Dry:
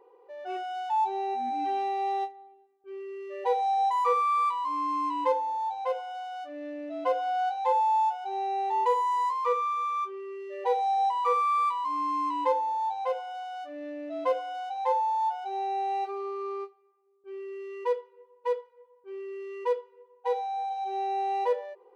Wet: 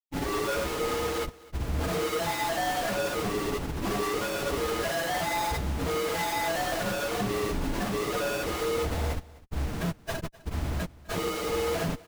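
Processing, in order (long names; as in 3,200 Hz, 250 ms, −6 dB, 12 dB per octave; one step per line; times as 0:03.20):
mains-hum notches 60/120/180/240/300/360/420/480 Hz
in parallel at −0.5 dB: downward compressor 12 to 1, threshold −36 dBFS, peak gain reduction 16 dB
on the sum: pitch-shifted copies added −3 semitones −7 dB, +7 semitones −17 dB, +12 semitones −2 dB
granular cloud 100 ms, grains 20 per second, pitch spread up and down by 0 semitones
frequency shifter −320 Hz
comparator with hysteresis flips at −31.5 dBFS
time stretch by phase vocoder 0.55×
on a send: single-tap delay 254 ms −21 dB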